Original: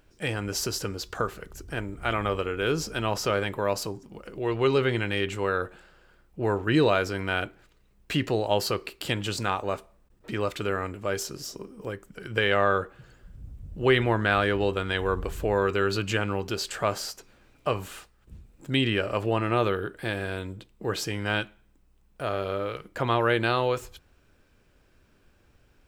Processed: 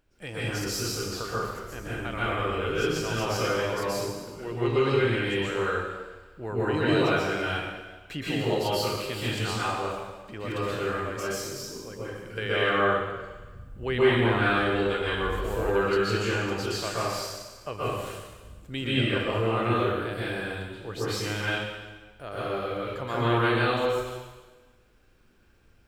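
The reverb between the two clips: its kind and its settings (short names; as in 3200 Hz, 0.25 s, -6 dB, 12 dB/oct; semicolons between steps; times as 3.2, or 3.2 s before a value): plate-style reverb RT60 1.3 s, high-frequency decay 1×, pre-delay 0.11 s, DRR -9 dB; gain -9.5 dB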